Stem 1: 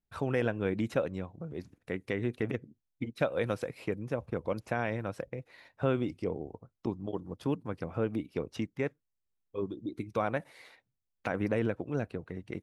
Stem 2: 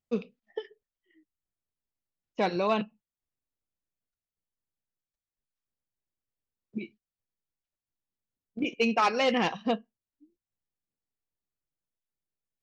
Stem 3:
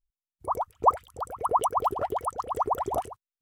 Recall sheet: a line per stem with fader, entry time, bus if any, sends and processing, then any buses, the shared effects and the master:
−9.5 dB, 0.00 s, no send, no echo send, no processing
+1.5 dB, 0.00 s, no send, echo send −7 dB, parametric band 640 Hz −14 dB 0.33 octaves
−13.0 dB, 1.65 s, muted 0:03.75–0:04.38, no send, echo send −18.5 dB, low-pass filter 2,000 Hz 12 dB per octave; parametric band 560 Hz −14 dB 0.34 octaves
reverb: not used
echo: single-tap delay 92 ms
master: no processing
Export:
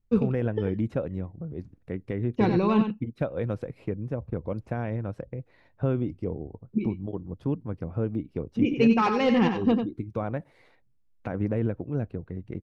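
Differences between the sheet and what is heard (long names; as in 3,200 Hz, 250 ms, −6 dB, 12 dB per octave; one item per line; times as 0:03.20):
stem 1 −9.5 dB → −3.5 dB
stem 3: muted
master: extra spectral tilt −3.5 dB per octave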